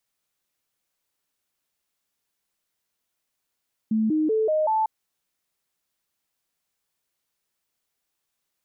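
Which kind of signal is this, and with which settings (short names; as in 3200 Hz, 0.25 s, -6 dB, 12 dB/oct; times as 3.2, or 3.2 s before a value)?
stepped sine 219 Hz up, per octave 2, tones 5, 0.19 s, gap 0.00 s -19 dBFS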